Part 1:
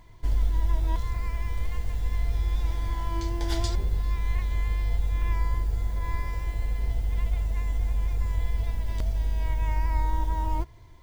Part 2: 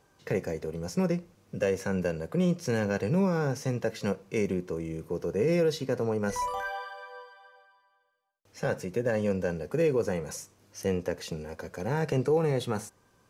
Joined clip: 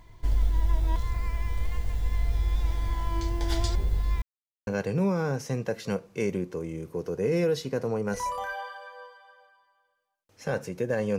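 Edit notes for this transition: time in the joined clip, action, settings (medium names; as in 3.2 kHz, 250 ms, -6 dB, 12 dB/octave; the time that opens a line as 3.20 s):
part 1
4.22–4.67 s: mute
4.67 s: go over to part 2 from 2.83 s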